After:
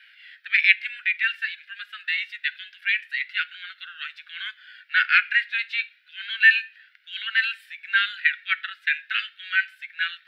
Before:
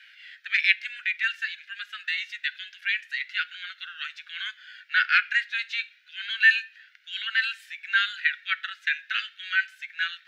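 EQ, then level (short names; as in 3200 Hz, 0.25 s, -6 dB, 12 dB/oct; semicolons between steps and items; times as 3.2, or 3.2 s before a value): dynamic EQ 2300 Hz, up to +5 dB, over -34 dBFS, Q 1.6; bell 6500 Hz -14.5 dB 0.47 oct; 0.0 dB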